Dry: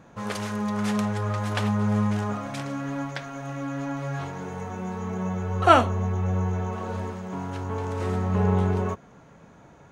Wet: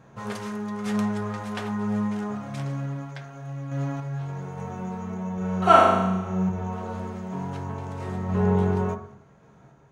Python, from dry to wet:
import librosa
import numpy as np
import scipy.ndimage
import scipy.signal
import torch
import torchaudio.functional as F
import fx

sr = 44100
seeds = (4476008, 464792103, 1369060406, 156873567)

y = fx.tremolo_random(x, sr, seeds[0], hz=3.5, depth_pct=55)
y = fx.room_flutter(y, sr, wall_m=6.4, rt60_s=1.0, at=(5.34, 6.49))
y = fx.rev_fdn(y, sr, rt60_s=0.59, lf_ratio=1.25, hf_ratio=0.35, size_ms=44.0, drr_db=2.5)
y = F.gain(torch.from_numpy(y), -3.0).numpy()